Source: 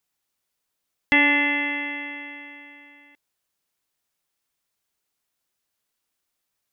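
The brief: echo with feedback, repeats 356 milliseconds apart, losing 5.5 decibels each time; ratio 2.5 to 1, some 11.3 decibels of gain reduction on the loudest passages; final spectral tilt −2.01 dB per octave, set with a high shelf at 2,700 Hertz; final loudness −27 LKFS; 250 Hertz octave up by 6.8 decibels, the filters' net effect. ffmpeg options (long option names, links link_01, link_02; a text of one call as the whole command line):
ffmpeg -i in.wav -af "equalizer=frequency=250:width_type=o:gain=8,highshelf=frequency=2700:gain=-4,acompressor=threshold=-30dB:ratio=2.5,aecho=1:1:356|712|1068|1424|1780|2136|2492:0.531|0.281|0.149|0.079|0.0419|0.0222|0.0118,volume=1.5dB" out.wav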